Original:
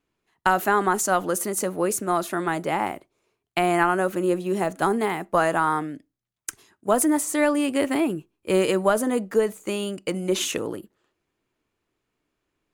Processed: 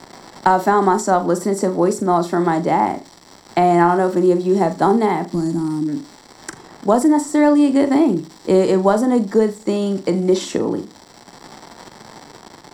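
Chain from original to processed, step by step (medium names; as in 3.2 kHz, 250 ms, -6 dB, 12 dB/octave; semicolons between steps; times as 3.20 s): time-frequency box 5.31–5.88 s, 350–4300 Hz -25 dB; crackle 330 per s -34 dBFS; treble shelf 9.6 kHz -8.5 dB; flutter echo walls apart 7 m, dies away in 0.22 s; reverberation RT60 0.45 s, pre-delay 3 ms, DRR 18.5 dB; three bands compressed up and down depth 40%; trim -1.5 dB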